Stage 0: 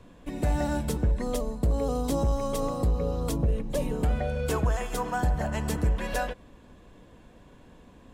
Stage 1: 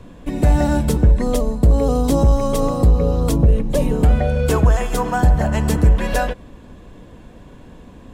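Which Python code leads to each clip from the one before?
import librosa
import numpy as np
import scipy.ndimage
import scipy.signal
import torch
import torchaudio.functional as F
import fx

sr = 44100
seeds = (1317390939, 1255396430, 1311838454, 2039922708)

y = fx.low_shelf(x, sr, hz=410.0, db=4.5)
y = F.gain(torch.from_numpy(y), 8.0).numpy()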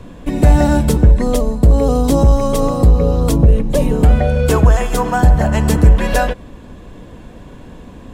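y = fx.rider(x, sr, range_db=3, speed_s=2.0)
y = F.gain(torch.from_numpy(y), 3.5).numpy()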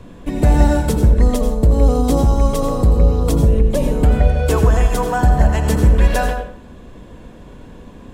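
y = fx.rev_plate(x, sr, seeds[0], rt60_s=0.53, hf_ratio=0.65, predelay_ms=75, drr_db=6.0)
y = F.gain(torch.from_numpy(y), -3.5).numpy()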